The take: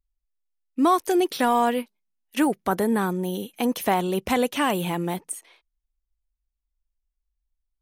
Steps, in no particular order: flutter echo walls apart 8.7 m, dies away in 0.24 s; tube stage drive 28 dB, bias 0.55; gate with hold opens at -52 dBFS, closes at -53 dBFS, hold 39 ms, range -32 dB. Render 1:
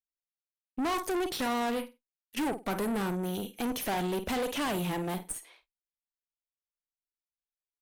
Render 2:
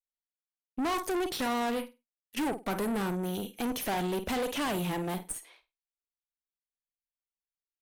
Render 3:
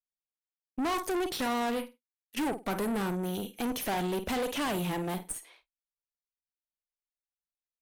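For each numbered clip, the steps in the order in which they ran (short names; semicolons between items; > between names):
flutter echo > gate with hold > tube stage; gate with hold > flutter echo > tube stage; flutter echo > tube stage > gate with hold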